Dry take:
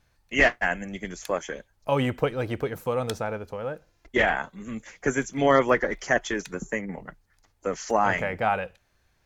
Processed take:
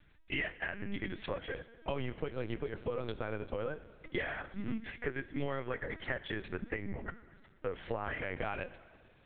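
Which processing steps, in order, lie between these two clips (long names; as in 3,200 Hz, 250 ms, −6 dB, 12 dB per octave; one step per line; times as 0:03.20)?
parametric band 810 Hz −7.5 dB 1.1 octaves
downward compressor 16 to 1, threshold −36 dBFS, peak gain reduction 21 dB
convolution reverb RT60 1.8 s, pre-delay 5 ms, DRR 14.5 dB
linear-prediction vocoder at 8 kHz pitch kept
level +3 dB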